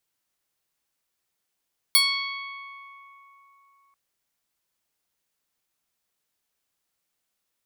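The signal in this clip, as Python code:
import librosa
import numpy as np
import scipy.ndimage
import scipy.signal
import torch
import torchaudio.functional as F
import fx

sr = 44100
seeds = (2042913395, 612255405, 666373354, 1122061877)

y = fx.pluck(sr, length_s=1.99, note=85, decay_s=3.94, pick=0.14, brightness='bright')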